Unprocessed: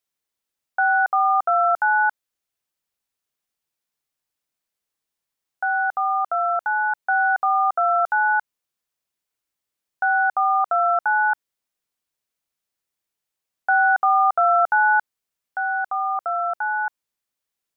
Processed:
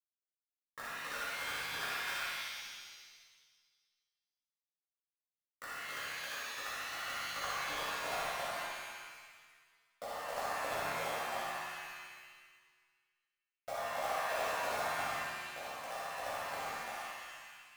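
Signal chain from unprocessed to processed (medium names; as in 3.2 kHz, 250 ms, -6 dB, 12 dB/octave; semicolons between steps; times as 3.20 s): pitch bend over the whole clip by +5 st starting unshifted; hum notches 60/120/180/240/300/360/420/480/540 Hz; spectral gate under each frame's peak -30 dB weak; peaking EQ 420 Hz +9.5 dB 2.8 oct; in parallel at -2 dB: peak limiter -34 dBFS, peak gain reduction 8 dB; on the sum: band-pass sweep 1.6 kHz -> 650 Hz, 6.98–8.33 s; word length cut 8-bit, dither none; on a send: flutter echo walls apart 10.5 m, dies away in 0.96 s; on the sum: pitch-shifted reverb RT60 1.5 s, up +7 st, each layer -2 dB, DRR -9.5 dB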